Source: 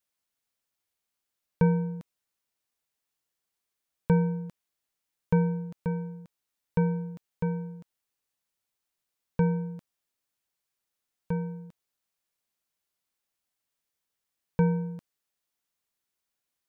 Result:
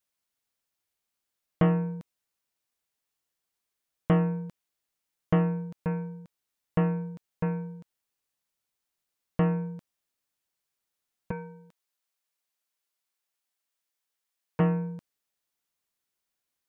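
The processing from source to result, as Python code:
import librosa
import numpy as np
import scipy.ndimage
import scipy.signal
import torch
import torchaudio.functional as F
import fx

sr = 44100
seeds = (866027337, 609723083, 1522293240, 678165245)

y = fx.highpass(x, sr, hz=550.0, slope=6, at=(11.31, 14.6))
y = fx.dynamic_eq(y, sr, hz=2100.0, q=0.75, threshold_db=-48.0, ratio=4.0, max_db=4)
y = fx.doppler_dist(y, sr, depth_ms=0.37)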